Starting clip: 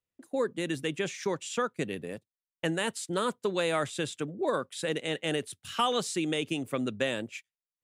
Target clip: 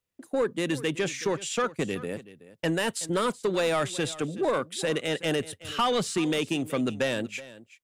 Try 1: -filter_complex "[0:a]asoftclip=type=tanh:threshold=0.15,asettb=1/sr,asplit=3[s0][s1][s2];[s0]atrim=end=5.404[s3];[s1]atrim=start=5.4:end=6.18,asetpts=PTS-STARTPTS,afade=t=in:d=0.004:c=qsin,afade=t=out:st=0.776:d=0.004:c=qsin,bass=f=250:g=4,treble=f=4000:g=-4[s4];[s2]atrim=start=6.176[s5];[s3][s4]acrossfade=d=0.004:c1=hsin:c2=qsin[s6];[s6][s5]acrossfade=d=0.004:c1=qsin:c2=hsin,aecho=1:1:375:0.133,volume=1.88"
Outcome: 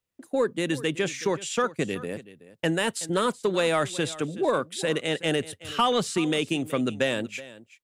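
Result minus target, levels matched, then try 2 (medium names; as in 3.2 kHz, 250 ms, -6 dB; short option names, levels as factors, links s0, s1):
saturation: distortion -10 dB
-filter_complex "[0:a]asoftclip=type=tanh:threshold=0.0631,asettb=1/sr,asplit=3[s0][s1][s2];[s0]atrim=end=5.404[s3];[s1]atrim=start=5.4:end=6.18,asetpts=PTS-STARTPTS,afade=t=in:d=0.004:c=qsin,afade=t=out:st=0.776:d=0.004:c=qsin,bass=f=250:g=4,treble=f=4000:g=-4[s4];[s2]atrim=start=6.176[s5];[s3][s4]acrossfade=d=0.004:c1=hsin:c2=qsin[s6];[s6][s5]acrossfade=d=0.004:c1=qsin:c2=hsin,aecho=1:1:375:0.133,volume=1.88"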